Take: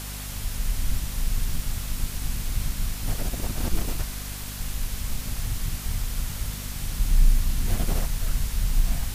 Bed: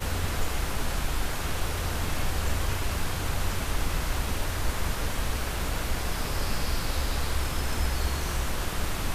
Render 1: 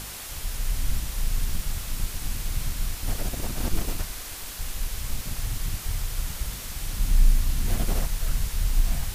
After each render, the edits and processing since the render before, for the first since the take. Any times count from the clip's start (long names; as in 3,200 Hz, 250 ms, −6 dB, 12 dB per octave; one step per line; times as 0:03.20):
hum removal 50 Hz, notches 5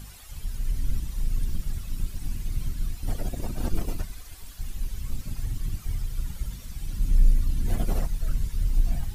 broadband denoise 14 dB, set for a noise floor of −37 dBFS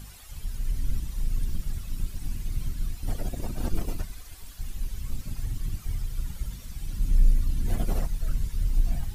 level −1 dB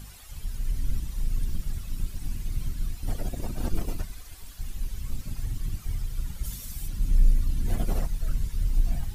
0:06.43–0:06.87: high-shelf EQ 3,900 Hz → 7,800 Hz +12 dB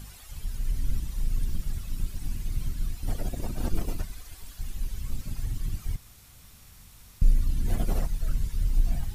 0:05.96–0:07.22: fill with room tone